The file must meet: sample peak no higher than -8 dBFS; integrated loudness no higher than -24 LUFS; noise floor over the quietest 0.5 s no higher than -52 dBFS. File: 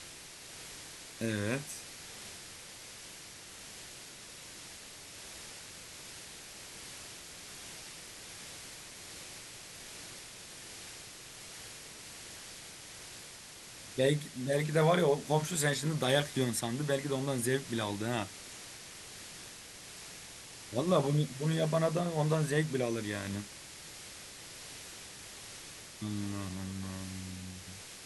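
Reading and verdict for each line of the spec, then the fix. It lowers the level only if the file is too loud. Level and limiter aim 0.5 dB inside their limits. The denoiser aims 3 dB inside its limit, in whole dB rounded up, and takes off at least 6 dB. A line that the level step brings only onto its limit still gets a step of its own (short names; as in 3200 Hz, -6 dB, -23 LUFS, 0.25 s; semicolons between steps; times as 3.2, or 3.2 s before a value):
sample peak -15.0 dBFS: OK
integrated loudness -36.5 LUFS: OK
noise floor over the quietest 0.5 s -50 dBFS: fail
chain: denoiser 6 dB, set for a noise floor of -50 dBFS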